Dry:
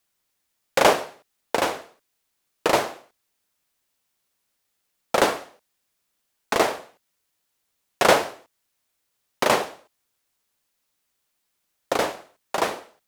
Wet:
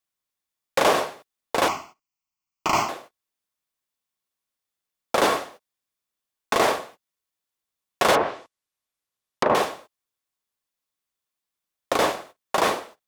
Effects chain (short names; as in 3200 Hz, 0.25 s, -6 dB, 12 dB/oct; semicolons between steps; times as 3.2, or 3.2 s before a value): small resonant body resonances 1100/3500 Hz, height 7 dB; 8.15–9.55 treble ducked by the level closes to 1100 Hz, closed at -19 dBFS; in parallel at -9 dB: wavefolder -11 dBFS; 1.68–2.89 on the sum: fixed phaser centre 2500 Hz, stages 8; limiter -13.5 dBFS, peak gain reduction 10 dB; gate -47 dBFS, range -17 dB; gain +3.5 dB